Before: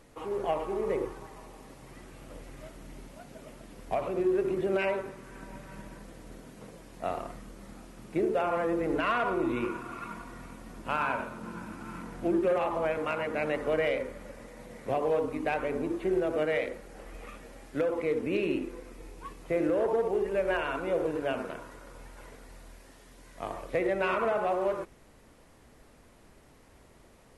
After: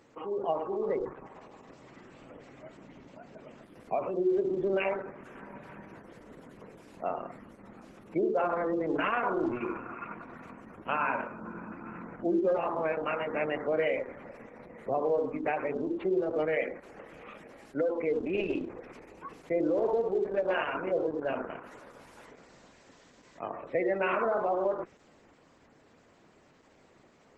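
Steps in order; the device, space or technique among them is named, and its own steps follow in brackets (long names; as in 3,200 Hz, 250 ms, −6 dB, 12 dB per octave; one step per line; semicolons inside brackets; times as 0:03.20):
noise-suppressed video call (high-pass filter 150 Hz 12 dB per octave; gate on every frequency bin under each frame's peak −25 dB strong; Opus 12 kbit/s 48,000 Hz)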